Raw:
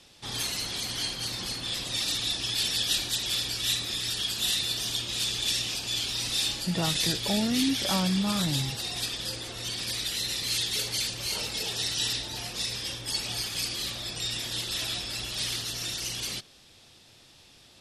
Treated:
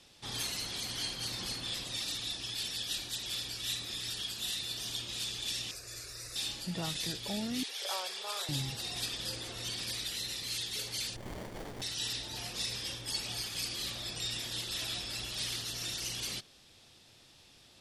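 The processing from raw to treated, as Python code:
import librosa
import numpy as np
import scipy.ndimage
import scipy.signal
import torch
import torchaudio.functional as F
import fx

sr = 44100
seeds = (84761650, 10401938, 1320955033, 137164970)

y = fx.ellip_highpass(x, sr, hz=410.0, order=4, stop_db=40, at=(7.63, 8.49))
y = fx.rider(y, sr, range_db=3, speed_s=0.5)
y = fx.fixed_phaser(y, sr, hz=860.0, stages=6, at=(5.71, 6.36))
y = fx.running_max(y, sr, window=33, at=(11.16, 11.82))
y = y * librosa.db_to_amplitude(-7.0)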